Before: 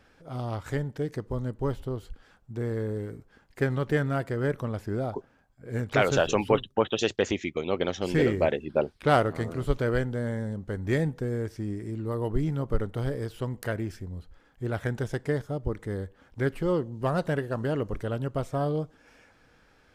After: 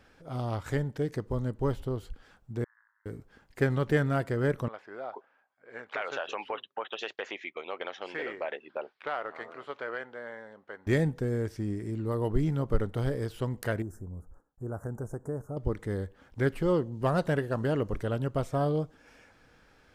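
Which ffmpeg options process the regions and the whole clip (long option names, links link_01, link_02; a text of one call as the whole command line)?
ffmpeg -i in.wav -filter_complex "[0:a]asettb=1/sr,asplit=3[link_01][link_02][link_03];[link_01]atrim=end=2.644[link_04];[link_02]atrim=start=2.64:end=3.06,asetpts=PTS-STARTPTS,afade=type=in:duration=0.004:curve=qsin,afade=type=out:start_time=0.416:duration=0.004:curve=qsin,aderivative,tremolo=f=170:d=0.571,asuperpass=centerf=1300:order=12:qfactor=1.4[link_05];[link_03]atrim=start=3.056[link_06];[link_04][link_05]acrossfade=duration=0.004:curve1=hsin:curve2=qsin[link_07];[link_07][link_06]acrossfade=duration=0.004:curve1=qsin:curve2=hsin,asettb=1/sr,asplit=3[link_08][link_09][link_10];[link_08]atrim=end=4.684[link_11];[link_09]atrim=start=4.68:end=10.87,asetpts=PTS-STARTPTS,afade=type=in:duration=0.004:curve=qsin,afade=type=out:start_time=6.186:duration=0.004:curve=qsin,highpass=780,lowpass=2500,acompressor=threshold=-30dB:ratio=3:attack=3.2:release=140:knee=1:detection=peak[link_12];[link_10]atrim=start=10.866[link_13];[link_11][link_12]acrossfade=duration=0.004:curve1=hsin:curve2=qsin[link_14];[link_14][link_13]acrossfade=duration=0.004:curve1=qsin:curve2=hsin,asettb=1/sr,asplit=3[link_15][link_16][link_17];[link_15]atrim=end=13.824[link_18];[link_16]atrim=start=13.82:end=15.57,asetpts=PTS-STARTPTS,afade=type=in:duration=0.004:curve=qsin,afade=type=out:start_time=1.746:duration=0.004:curve=qsin,acompressor=threshold=-42dB:ratio=1.5:attack=3.2:release=140:knee=1:detection=peak,asuperstop=centerf=3100:order=8:qfactor=0.57,agate=range=-33dB:threshold=-54dB:ratio=3:release=100:detection=peak[link_19];[link_17]atrim=start=15.566[link_20];[link_18][link_19]acrossfade=duration=0.004:curve1=hsin:curve2=qsin[link_21];[link_21][link_20]acrossfade=duration=0.004:curve1=qsin:curve2=hsin" out.wav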